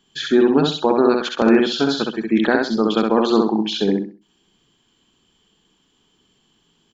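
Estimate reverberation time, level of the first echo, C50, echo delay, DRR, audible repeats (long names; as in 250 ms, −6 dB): no reverb audible, −3.0 dB, no reverb audible, 65 ms, no reverb audible, 3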